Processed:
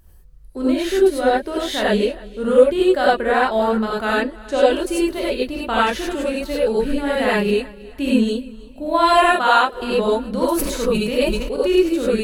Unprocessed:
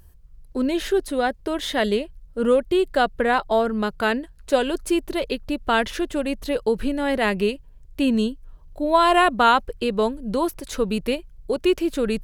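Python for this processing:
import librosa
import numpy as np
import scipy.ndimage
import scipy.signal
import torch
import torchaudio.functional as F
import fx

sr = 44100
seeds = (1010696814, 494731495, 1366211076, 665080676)

p1 = fx.highpass(x, sr, hz=510.0, slope=6, at=(9.25, 9.72))
p2 = fx.wow_flutter(p1, sr, seeds[0], rate_hz=2.1, depth_cents=29.0)
p3 = fx.lowpass(p2, sr, hz=8000.0, slope=12, at=(4.17, 4.68))
p4 = p3 + fx.echo_feedback(p3, sr, ms=317, feedback_pct=37, wet_db=-21.0, dry=0)
p5 = fx.rev_gated(p4, sr, seeds[1], gate_ms=120, shape='rising', drr_db=-6.0)
p6 = fx.sustainer(p5, sr, db_per_s=36.0, at=(10.51, 11.54))
y = F.gain(torch.from_numpy(p6), -3.5).numpy()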